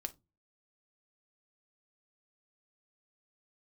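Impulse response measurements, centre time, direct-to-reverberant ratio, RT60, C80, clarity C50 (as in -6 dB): 4 ms, 7.0 dB, 0.25 s, 31.0 dB, 21.0 dB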